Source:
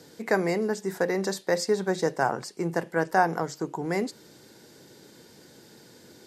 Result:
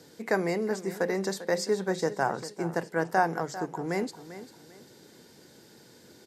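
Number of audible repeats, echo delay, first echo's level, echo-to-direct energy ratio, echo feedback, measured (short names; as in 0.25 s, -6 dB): 2, 0.396 s, -14.0 dB, -13.5 dB, 29%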